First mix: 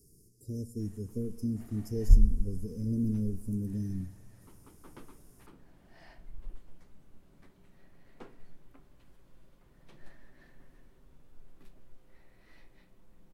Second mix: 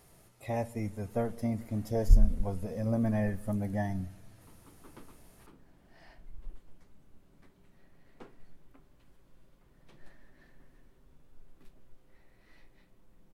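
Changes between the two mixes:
speech: remove Chebyshev band-stop 440–5000 Hz, order 5; background: send -7.5 dB

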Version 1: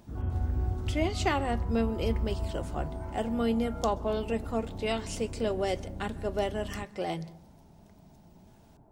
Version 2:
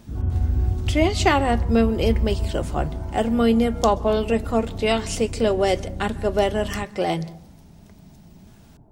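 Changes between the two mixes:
speech +10.0 dB; background: add bass shelf 370 Hz +9 dB

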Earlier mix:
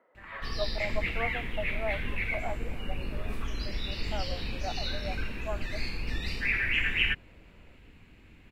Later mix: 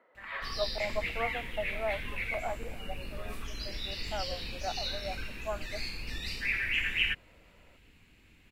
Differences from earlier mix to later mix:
background -7.0 dB; master: add treble shelf 2.9 kHz +12 dB

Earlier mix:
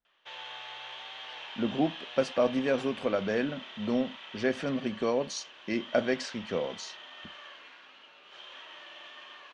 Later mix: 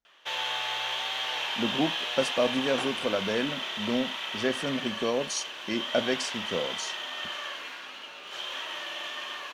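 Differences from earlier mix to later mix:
background +11.0 dB; master: remove low-pass 4.5 kHz 12 dB/octave

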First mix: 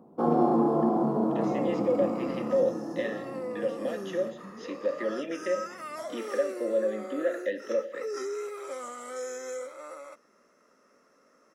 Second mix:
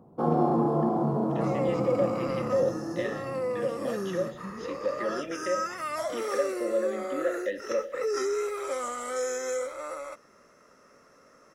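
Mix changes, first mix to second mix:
second sound +6.5 dB; master: add resonant low shelf 160 Hz +9.5 dB, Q 1.5

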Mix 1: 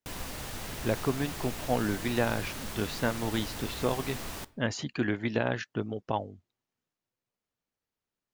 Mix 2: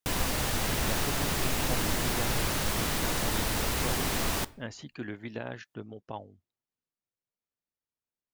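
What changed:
speech -9.0 dB; background +9.5 dB

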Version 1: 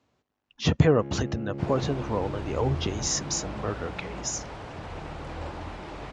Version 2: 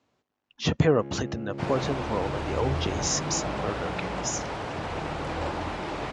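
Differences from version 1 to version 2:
second sound +7.5 dB; master: add bass shelf 84 Hz -10.5 dB

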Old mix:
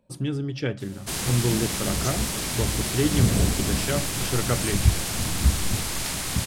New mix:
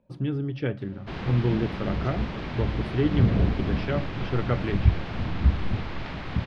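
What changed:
background: add distance through air 140 m; master: add distance through air 330 m

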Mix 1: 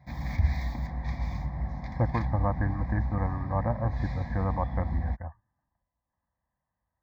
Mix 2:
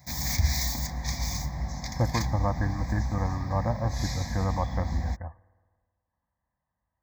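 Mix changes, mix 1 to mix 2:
background: remove distance through air 490 m; reverb: on, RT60 1.6 s

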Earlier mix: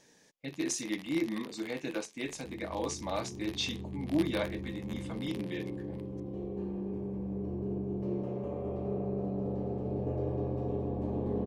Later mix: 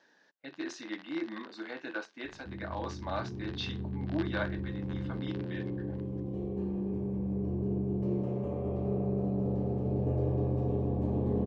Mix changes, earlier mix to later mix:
speech: add cabinet simulation 340–4200 Hz, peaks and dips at 460 Hz -7 dB, 1.5 kHz +10 dB, 2.3 kHz -8 dB, 3.3 kHz -4 dB; background: add peaking EQ 110 Hz +6 dB 2 oct

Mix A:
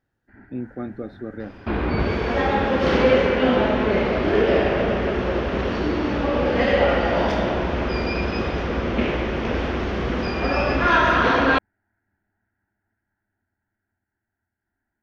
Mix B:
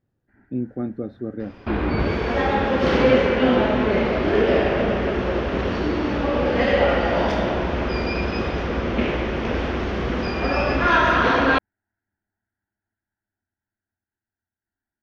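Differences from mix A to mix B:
speech: add tilt shelf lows +5.5 dB, about 700 Hz; first sound -9.5 dB

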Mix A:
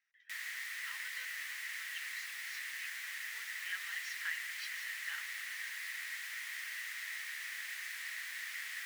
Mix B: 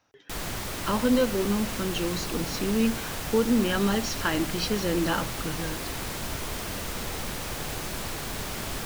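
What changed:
speech +6.0 dB; master: remove ladder high-pass 1.8 kHz, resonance 80%

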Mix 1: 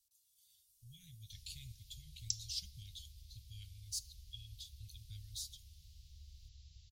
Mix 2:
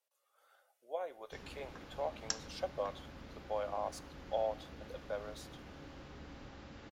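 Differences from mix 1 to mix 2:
speech: add ladder high-pass 500 Hz, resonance 60%; master: remove inverse Chebyshev band-stop 320–1200 Hz, stop band 70 dB

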